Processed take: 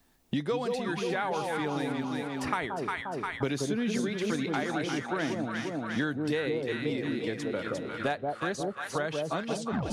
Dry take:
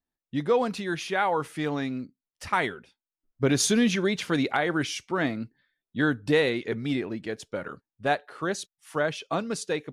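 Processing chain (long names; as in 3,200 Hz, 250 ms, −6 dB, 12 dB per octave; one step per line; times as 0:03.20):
turntable brake at the end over 0.35 s
delay that swaps between a low-pass and a high-pass 176 ms, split 870 Hz, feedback 66%, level −2 dB
multiband upward and downward compressor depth 100%
level −7 dB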